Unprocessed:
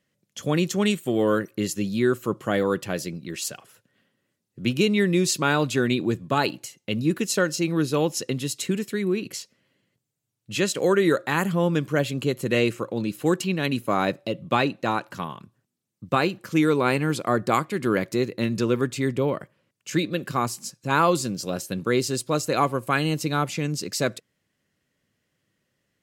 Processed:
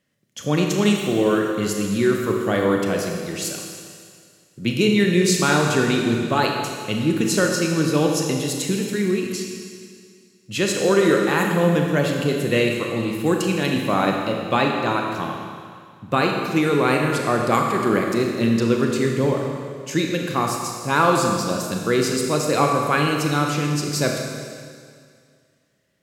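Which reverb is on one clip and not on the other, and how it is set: Schroeder reverb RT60 2.1 s, combs from 27 ms, DRR 1 dB; trim +1.5 dB

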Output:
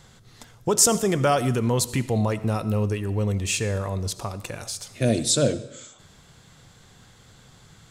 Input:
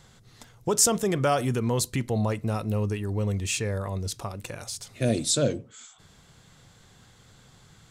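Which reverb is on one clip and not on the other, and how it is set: algorithmic reverb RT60 0.85 s, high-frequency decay 0.95×, pre-delay 35 ms, DRR 15 dB; trim +3 dB

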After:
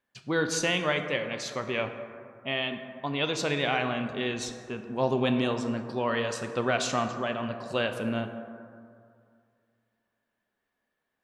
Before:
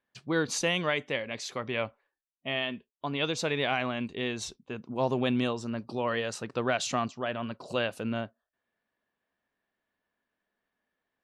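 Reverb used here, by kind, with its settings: plate-style reverb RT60 2.3 s, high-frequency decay 0.35×, DRR 6 dB; trim +1 dB

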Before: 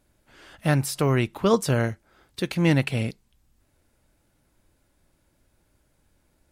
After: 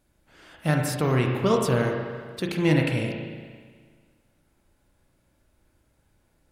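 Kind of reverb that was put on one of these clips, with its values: spring tank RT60 1.7 s, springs 32/38 ms, chirp 35 ms, DRR 1 dB; trim -2.5 dB

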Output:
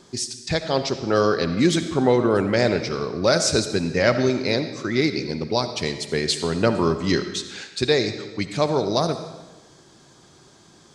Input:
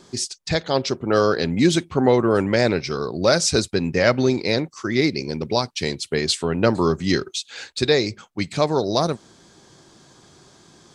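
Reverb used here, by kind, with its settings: algorithmic reverb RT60 1.2 s, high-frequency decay 0.95×, pre-delay 30 ms, DRR 9 dB; trim -1.5 dB

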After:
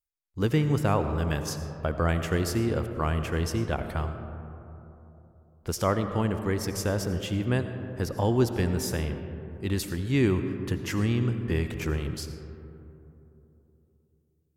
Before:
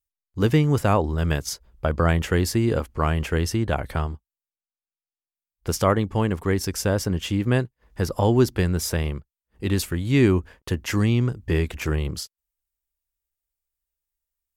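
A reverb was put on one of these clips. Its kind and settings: algorithmic reverb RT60 3.3 s, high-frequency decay 0.3×, pre-delay 45 ms, DRR 8 dB; trim -5.5 dB

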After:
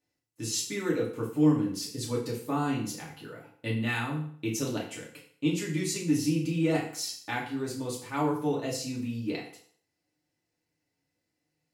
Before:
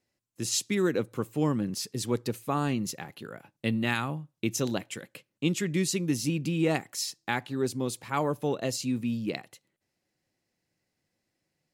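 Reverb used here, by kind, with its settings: FDN reverb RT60 0.55 s, low-frequency decay 0.9×, high-frequency decay 0.9×, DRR -4.5 dB; trim -7.5 dB

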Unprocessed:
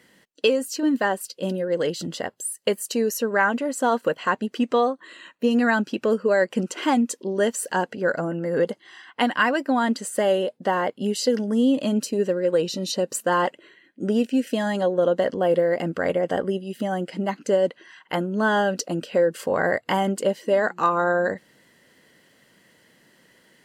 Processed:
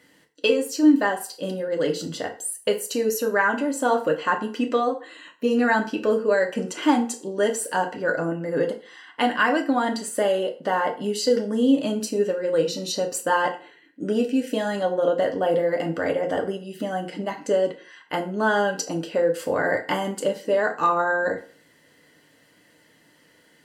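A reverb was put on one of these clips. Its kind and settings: FDN reverb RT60 0.41 s, low-frequency decay 0.8×, high-frequency decay 0.8×, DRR 2 dB; trim -2 dB

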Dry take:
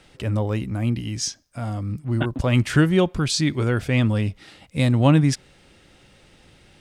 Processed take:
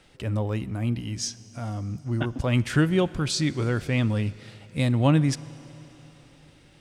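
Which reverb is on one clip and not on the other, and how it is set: Schroeder reverb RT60 3.9 s, combs from 26 ms, DRR 18 dB; trim -4 dB

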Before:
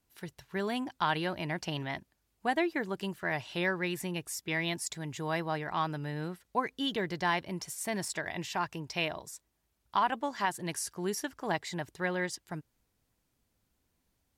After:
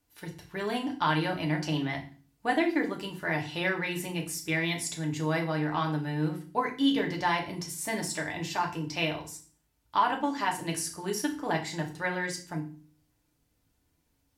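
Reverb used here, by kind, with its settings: FDN reverb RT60 0.39 s, low-frequency decay 1.6×, high-frequency decay 1×, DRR 0.5 dB

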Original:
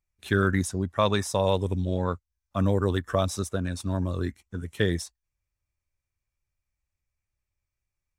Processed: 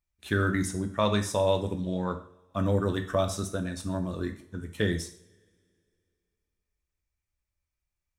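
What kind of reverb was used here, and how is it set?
two-slope reverb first 0.5 s, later 2.5 s, from -27 dB, DRR 5.5 dB; trim -3 dB

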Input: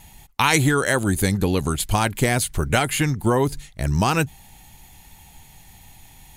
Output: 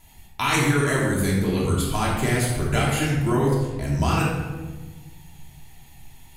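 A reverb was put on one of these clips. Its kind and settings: simulated room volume 850 m³, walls mixed, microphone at 3 m; trim -9 dB

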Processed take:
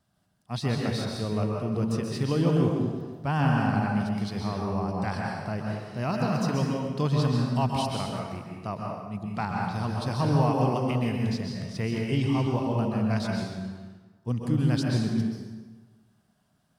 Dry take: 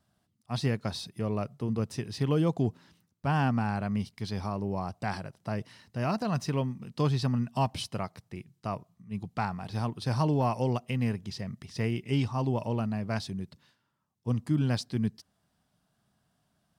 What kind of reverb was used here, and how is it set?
plate-style reverb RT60 1.4 s, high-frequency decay 0.7×, pre-delay 115 ms, DRR -1 dB

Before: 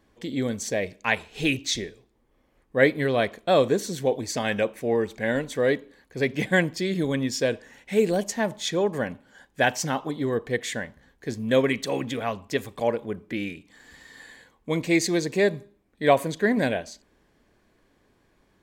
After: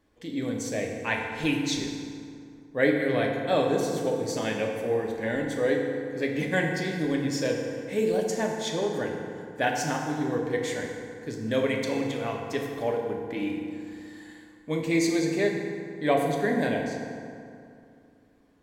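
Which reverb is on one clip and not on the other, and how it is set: FDN reverb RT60 2.5 s, low-frequency decay 1.1×, high-frequency decay 0.55×, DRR 0 dB; trim -6 dB

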